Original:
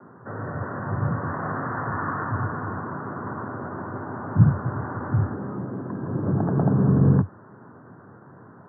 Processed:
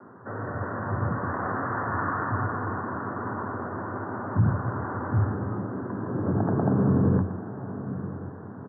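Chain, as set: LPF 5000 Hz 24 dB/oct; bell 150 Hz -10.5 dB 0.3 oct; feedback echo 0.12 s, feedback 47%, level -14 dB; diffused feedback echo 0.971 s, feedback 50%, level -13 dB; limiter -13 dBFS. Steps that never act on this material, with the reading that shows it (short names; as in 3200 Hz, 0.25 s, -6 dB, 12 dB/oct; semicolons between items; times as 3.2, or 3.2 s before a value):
LPF 5000 Hz: input band ends at 1500 Hz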